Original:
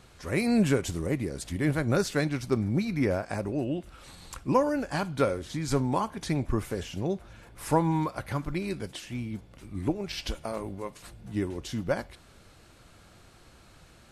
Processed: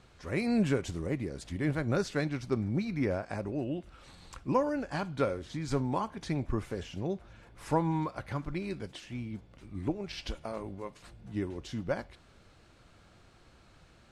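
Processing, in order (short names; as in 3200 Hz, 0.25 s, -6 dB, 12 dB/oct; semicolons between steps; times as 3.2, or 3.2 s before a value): air absorption 58 m; gain -4 dB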